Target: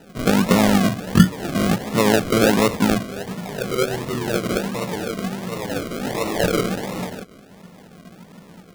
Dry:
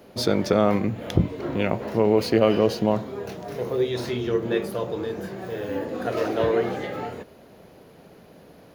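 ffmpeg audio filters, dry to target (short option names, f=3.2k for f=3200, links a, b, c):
-filter_complex "[0:a]equalizer=f=180:t=o:w=0.39:g=13.5,asplit=2[a][b];[b]asetrate=55563,aresample=44100,atempo=0.793701,volume=-7dB[c];[a][c]amix=inputs=2:normalize=0,acrusher=samples=39:mix=1:aa=0.000001:lfo=1:lforange=23.4:lforate=1.4"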